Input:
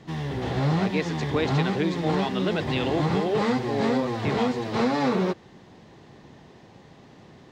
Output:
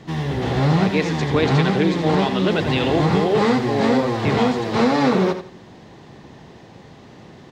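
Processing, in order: feedback delay 84 ms, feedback 23%, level -10 dB; 1.17–2.51 s: loudspeaker Doppler distortion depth 0.13 ms; trim +6 dB

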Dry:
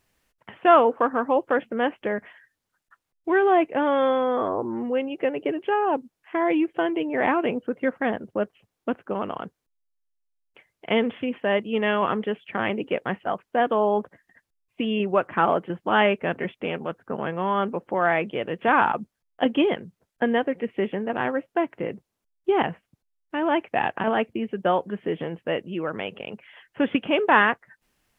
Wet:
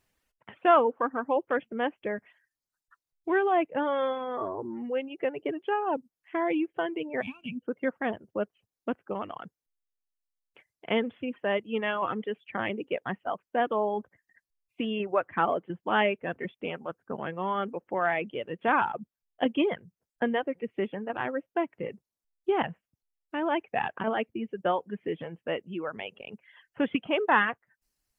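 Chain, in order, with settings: time-frequency box 7.21–7.62 s, 270–2200 Hz -21 dB; reverb removal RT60 1.4 s; trim -4.5 dB

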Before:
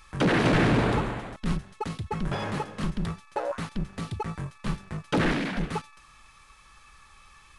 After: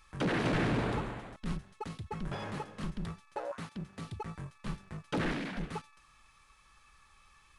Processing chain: 3.44–4.02 s: high-pass 83 Hz; trim -8.5 dB

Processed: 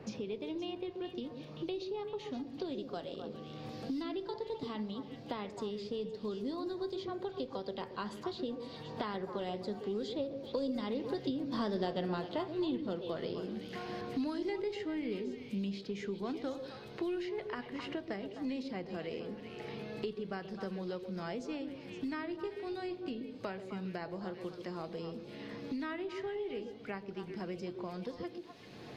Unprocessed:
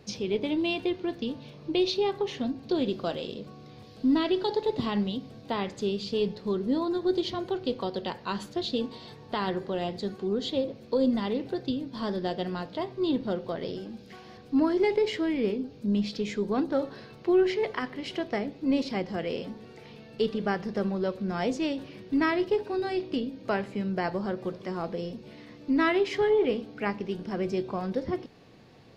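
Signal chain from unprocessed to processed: Doppler pass-by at 11.97 s, 12 m/s, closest 3.7 m; repeats whose band climbs or falls 129 ms, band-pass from 390 Hz, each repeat 1.4 oct, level -6 dB; three bands compressed up and down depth 100%; trim +11 dB

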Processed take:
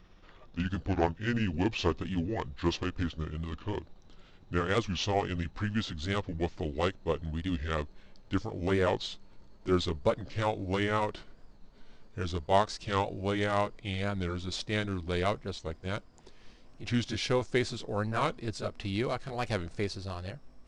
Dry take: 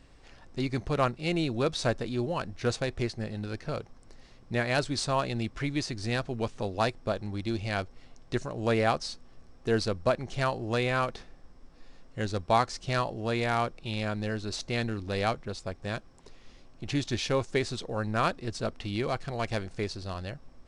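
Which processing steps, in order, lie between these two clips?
pitch bend over the whole clip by -7 st ending unshifted; warped record 45 rpm, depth 160 cents

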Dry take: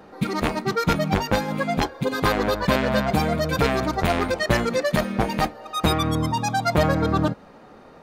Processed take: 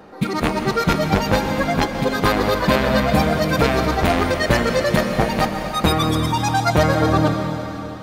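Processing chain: plate-style reverb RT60 3.4 s, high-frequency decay 1×, pre-delay 110 ms, DRR 5 dB; trim +3 dB

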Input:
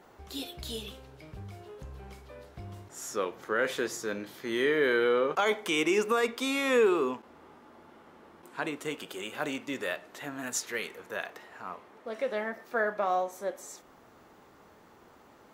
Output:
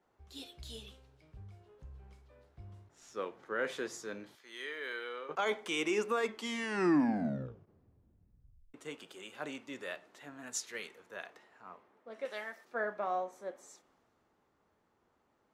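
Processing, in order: 2.87–3.46 s: median filter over 5 samples; 4.35–5.29 s: high-pass 1.5 kHz 6 dB/octave; 6.16 s: tape stop 2.58 s; 12.25–12.65 s: tilt EQ +4 dB/octave; low-pass 9.8 kHz 12 dB/octave; three bands expanded up and down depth 40%; trim -8 dB

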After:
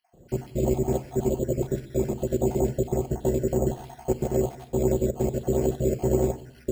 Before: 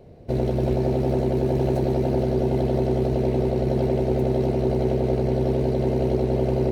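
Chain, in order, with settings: random holes in the spectrogram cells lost 56%; 2.54–3.05 s: distance through air 89 m; reverberation RT60 0.70 s, pre-delay 5 ms, DRR 8 dB; careless resampling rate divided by 6×, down none, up hold; upward expansion 1.5:1, over -31 dBFS

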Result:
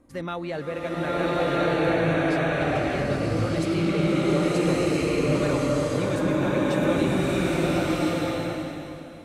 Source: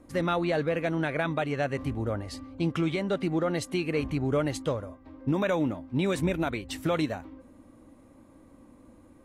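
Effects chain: swelling reverb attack 1350 ms, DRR -10 dB; trim -4.5 dB

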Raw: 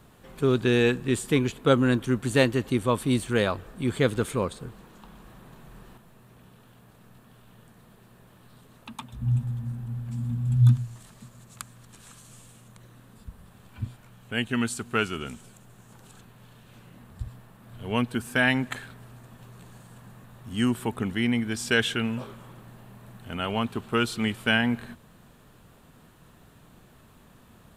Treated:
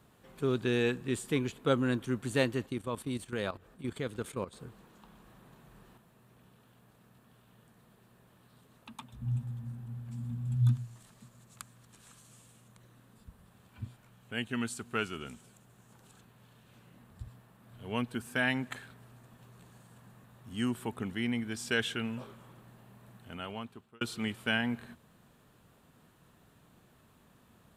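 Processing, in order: high-pass 63 Hz 6 dB/octave; 2.66–4.53 s: level held to a coarse grid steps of 13 dB; 23.16–24.01 s: fade out; trim -7.5 dB

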